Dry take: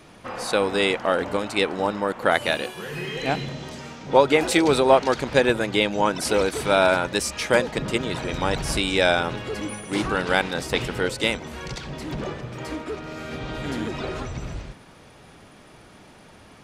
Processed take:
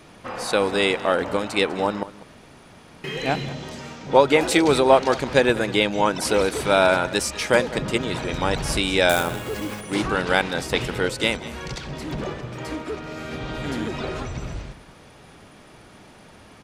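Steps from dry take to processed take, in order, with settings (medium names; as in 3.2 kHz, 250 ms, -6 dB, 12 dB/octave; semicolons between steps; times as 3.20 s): 2.03–3.04 s: room tone; 9.09–9.81 s: sample-rate reducer 11 kHz, jitter 20%; delay 197 ms -18 dB; trim +1 dB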